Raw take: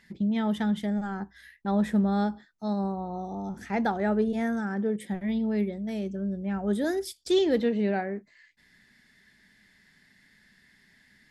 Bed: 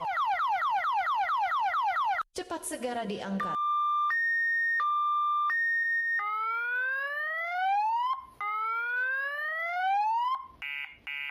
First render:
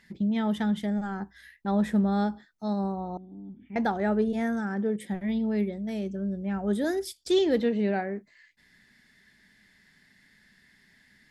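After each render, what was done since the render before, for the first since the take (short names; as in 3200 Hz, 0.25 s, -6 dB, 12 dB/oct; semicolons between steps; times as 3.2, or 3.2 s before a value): 3.17–3.76 vocal tract filter i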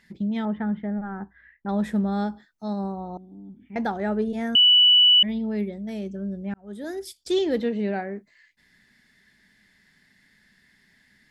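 0.45–1.69 LPF 2000 Hz 24 dB/oct; 4.55–5.23 bleep 2960 Hz -12 dBFS; 6.54–7.18 fade in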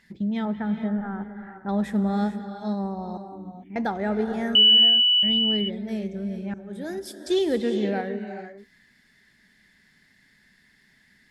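non-linear reverb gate 0.48 s rising, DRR 7.5 dB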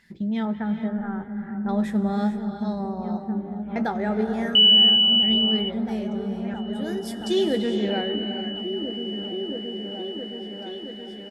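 doubler 18 ms -12 dB; repeats that get brighter 0.671 s, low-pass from 200 Hz, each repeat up 1 oct, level -3 dB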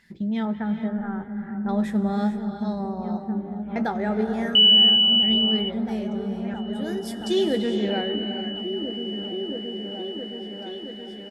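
nothing audible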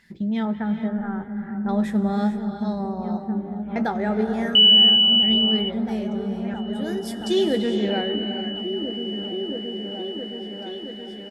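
gain +1.5 dB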